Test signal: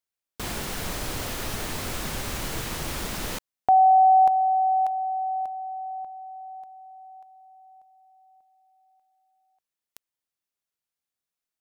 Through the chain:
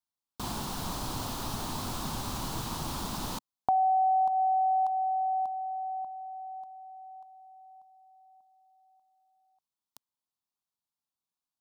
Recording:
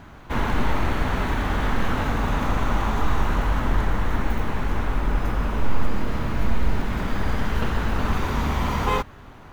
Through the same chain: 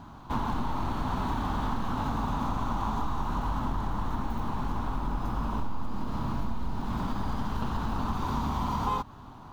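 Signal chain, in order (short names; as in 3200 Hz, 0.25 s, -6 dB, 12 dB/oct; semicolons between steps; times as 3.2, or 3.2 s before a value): graphic EQ 125/250/500/1000/2000/4000 Hz +4/+6/-6/+10/-11/+5 dB; compressor 5:1, threshold -20 dBFS; bell 790 Hz +2 dB; gain -6 dB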